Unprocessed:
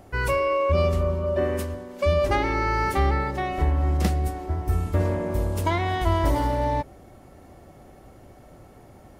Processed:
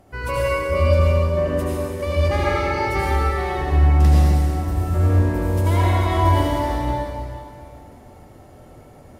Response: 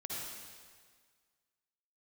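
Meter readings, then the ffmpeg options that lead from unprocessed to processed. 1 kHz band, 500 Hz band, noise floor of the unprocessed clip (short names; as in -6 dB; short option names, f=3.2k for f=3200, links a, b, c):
+2.5 dB, +2.5 dB, -49 dBFS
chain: -filter_complex "[1:a]atrim=start_sample=2205,asetrate=31752,aresample=44100[a];[0:a][a]afir=irnorm=-1:irlink=0"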